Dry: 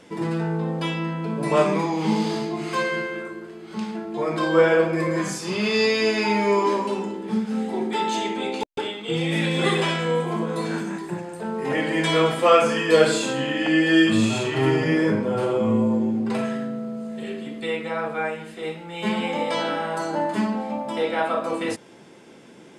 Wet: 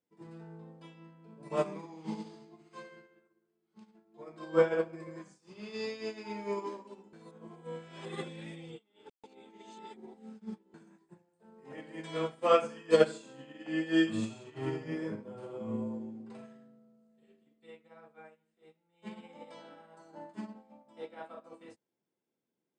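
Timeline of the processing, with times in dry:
7.13–10.74 s: reverse
whole clip: steep low-pass 9.4 kHz 96 dB/octave; peaking EQ 2.4 kHz -4 dB 2.4 oct; upward expansion 2.5:1, over -36 dBFS; trim -5 dB

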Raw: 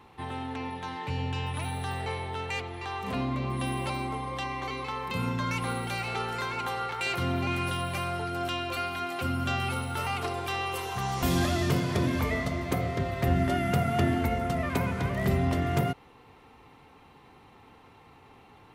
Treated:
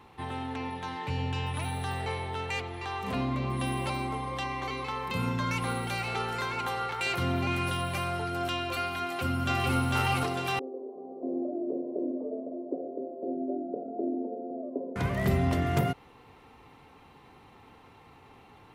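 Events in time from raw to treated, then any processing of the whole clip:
9.04–9.78 s: echo throw 450 ms, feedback 50%, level -0.5 dB
10.59–14.96 s: elliptic band-pass 270–610 Hz, stop band 60 dB

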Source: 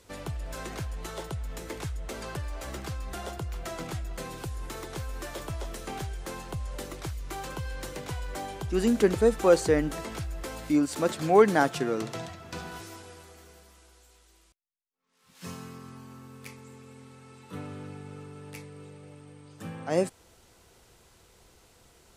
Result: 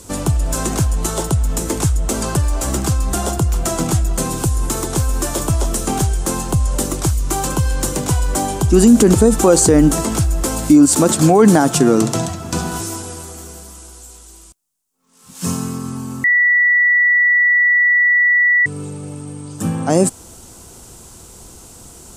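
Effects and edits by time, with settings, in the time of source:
16.24–18.66 s: bleep 1.95 kHz -17.5 dBFS
whole clip: ten-band graphic EQ 250 Hz +4 dB, 500 Hz -5 dB, 2 kHz -10 dB, 4 kHz -5 dB, 8 kHz +8 dB; loudness maximiser +19.5 dB; trim -1 dB

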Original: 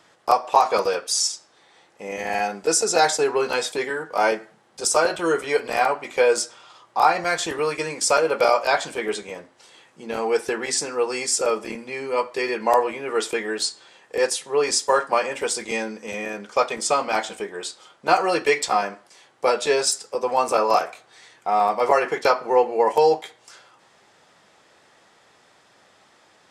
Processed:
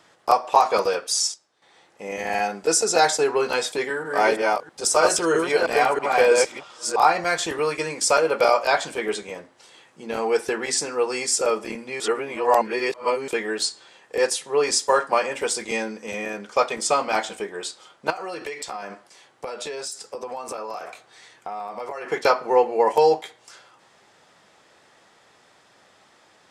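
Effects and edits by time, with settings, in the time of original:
0.87–2.09 s: dip -12 dB, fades 0.47 s logarithmic
3.72–7.04 s: chunks repeated in reverse 324 ms, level -2 dB
12.00–13.28 s: reverse
18.10–22.12 s: compression 12:1, threshold -28 dBFS

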